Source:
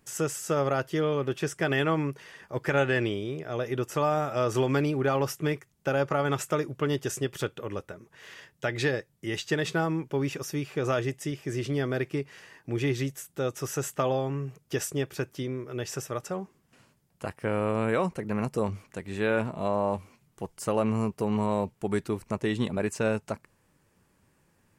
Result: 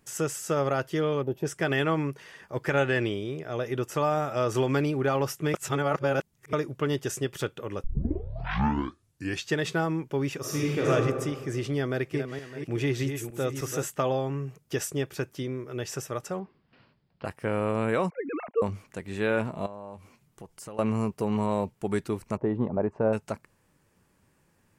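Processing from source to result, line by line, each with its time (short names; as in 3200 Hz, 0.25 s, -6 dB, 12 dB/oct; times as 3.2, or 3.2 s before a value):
1.23–1.46 spectral gain 1000–11000 Hz -16 dB
5.54–6.53 reverse
7.84 tape start 1.66 s
10.4–10.9 reverb throw, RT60 1.6 s, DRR -5 dB
11.78–13.86 regenerating reverse delay 0.305 s, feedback 40%, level -7.5 dB
16.39–17.25 steep low-pass 4900 Hz 72 dB/oct
18.1–18.62 sine-wave speech
19.66–20.79 compressor 3:1, threshold -42 dBFS
22.37–23.13 synth low-pass 840 Hz, resonance Q 1.6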